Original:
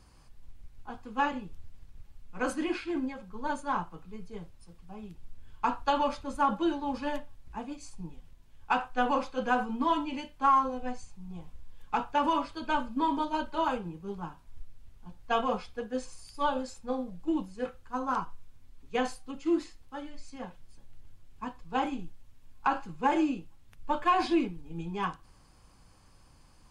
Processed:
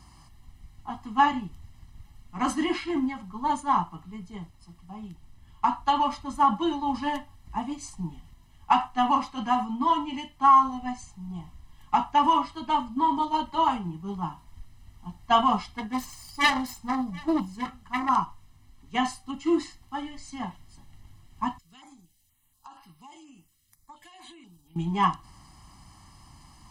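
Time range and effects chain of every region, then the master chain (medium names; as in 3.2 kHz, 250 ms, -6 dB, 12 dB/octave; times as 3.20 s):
15.67–18.09 s: self-modulated delay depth 0.54 ms + delay 732 ms -23.5 dB
21.58–24.76 s: compression, threshold -36 dBFS + pre-emphasis filter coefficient 0.9 + step-sequenced notch 4.2 Hz 880–7000 Hz
whole clip: high-pass 71 Hz 6 dB/octave; comb 1 ms, depth 96%; gain riding within 4 dB 2 s; trim +1.5 dB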